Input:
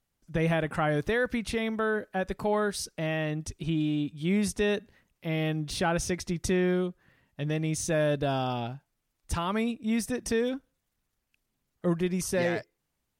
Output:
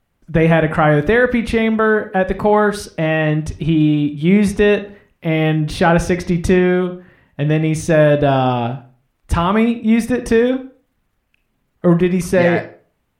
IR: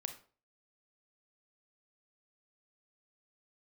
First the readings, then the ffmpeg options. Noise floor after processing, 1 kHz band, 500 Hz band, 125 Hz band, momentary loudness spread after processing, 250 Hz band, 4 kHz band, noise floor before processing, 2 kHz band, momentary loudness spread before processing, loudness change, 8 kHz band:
−67 dBFS, +14.5 dB, +14.0 dB, +14.0 dB, 8 LU, +14.0 dB, +8.0 dB, −81 dBFS, +13.5 dB, 7 LU, +14.0 dB, +3.0 dB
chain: -filter_complex "[0:a]asplit=2[link_01][link_02];[1:a]atrim=start_sample=2205,lowpass=3100[link_03];[link_02][link_03]afir=irnorm=-1:irlink=0,volume=8dB[link_04];[link_01][link_04]amix=inputs=2:normalize=0,volume=5dB"

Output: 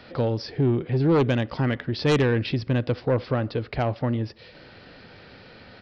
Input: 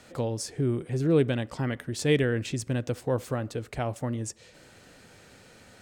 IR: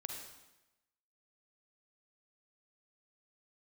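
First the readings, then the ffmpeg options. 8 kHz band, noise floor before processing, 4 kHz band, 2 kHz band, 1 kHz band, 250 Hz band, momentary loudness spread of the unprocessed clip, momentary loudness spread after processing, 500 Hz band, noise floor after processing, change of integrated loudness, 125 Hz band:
below −10 dB, −54 dBFS, +4.0 dB, +4.0 dB, +7.0 dB, +4.5 dB, 9 LU, 6 LU, +3.5 dB, −48 dBFS, +4.5 dB, +5.0 dB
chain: -af "aresample=11025,aresample=44100,aeval=exprs='0.266*sin(PI/2*2*val(0)/0.266)':channel_layout=same,volume=-3.5dB"

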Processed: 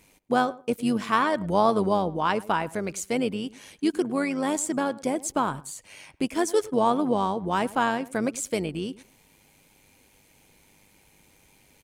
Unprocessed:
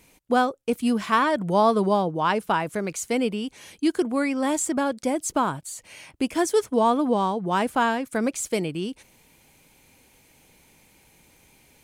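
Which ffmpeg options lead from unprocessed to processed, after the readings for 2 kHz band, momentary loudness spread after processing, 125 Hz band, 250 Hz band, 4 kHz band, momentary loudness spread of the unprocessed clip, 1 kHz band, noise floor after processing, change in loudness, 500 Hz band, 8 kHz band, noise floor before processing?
−2.0 dB, 9 LU, −1.0 dB, −2.0 dB, −2.0 dB, 9 LU, −2.0 dB, −60 dBFS, −2.0 dB, −2.0 dB, −2.0 dB, −58 dBFS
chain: -filter_complex "[0:a]equalizer=frequency=12000:width=6.9:gain=-2.5,asplit=2[link_01][link_02];[link_02]adelay=105,lowpass=frequency=1500:poles=1,volume=-18.5dB,asplit=2[link_03][link_04];[link_04]adelay=105,lowpass=frequency=1500:poles=1,volume=0.18[link_05];[link_03][link_05]amix=inputs=2:normalize=0[link_06];[link_01][link_06]amix=inputs=2:normalize=0,tremolo=f=100:d=0.462"

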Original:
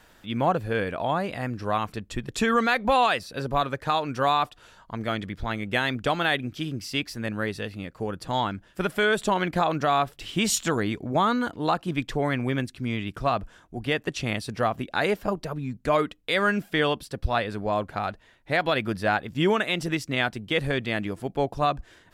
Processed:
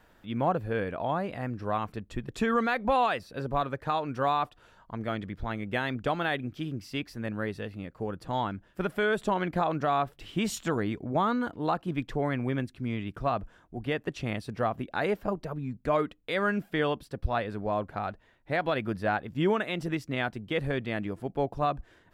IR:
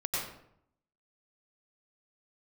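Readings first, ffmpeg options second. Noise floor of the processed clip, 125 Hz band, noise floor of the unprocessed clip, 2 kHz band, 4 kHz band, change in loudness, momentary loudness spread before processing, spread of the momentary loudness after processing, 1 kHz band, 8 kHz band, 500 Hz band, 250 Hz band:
−62 dBFS, −3.0 dB, −57 dBFS, −6.5 dB, −9.5 dB, −4.5 dB, 8 LU, 8 LU, −4.0 dB, −12.5 dB, −3.5 dB, −3.0 dB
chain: -af "equalizer=frequency=7500:width=0.32:gain=-9.5,volume=-3dB"

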